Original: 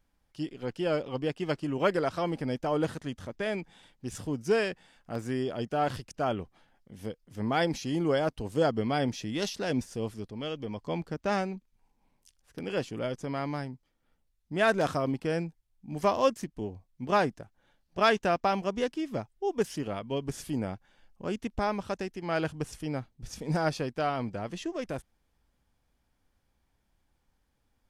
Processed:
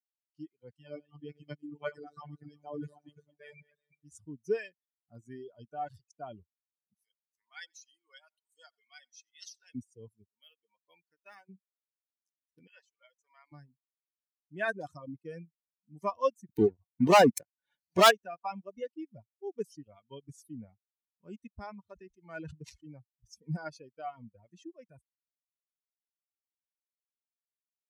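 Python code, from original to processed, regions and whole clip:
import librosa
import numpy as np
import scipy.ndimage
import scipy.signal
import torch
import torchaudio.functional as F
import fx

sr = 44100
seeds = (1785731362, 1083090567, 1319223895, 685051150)

y = fx.chain(x, sr, fx.reverse_delay_fb(ms=187, feedback_pct=47, wet_db=-6.0),
    fx.robotise(hz=147.0), at=(0.77, 4.11))
y = fx.chain(y, sr, fx.bessel_highpass(hz=1700.0, order=2),
    fx.echo_single(ms=91, db=-12.5), at=(6.94, 9.75))
y = fx.chain(y, sr, fx.highpass(hz=1300.0, slope=6),
    fx.resample_linear(factor=3), at=(10.29, 11.49))
y = fx.chain(y, sr, fx.highpass(hz=970.0, slope=12),
    fx.high_shelf(hz=5800.0, db=-5.0), at=(12.67, 13.52))
y = fx.chain(y, sr, fx.highpass(hz=220.0, slope=6),
    fx.leveller(passes=5),
    fx.pre_swell(db_per_s=87.0), at=(16.49, 18.11))
y = fx.chain(y, sr, fx.dead_time(dead_ms=0.06),
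    fx.air_absorb(metres=62.0),
    fx.sustainer(db_per_s=73.0), at=(21.81, 22.92))
y = fx.bin_expand(y, sr, power=2.0)
y = fx.dereverb_blind(y, sr, rt60_s=1.2)
y = scipy.signal.sosfilt(scipy.signal.butter(2, 110.0, 'highpass', fs=sr, output='sos'), y)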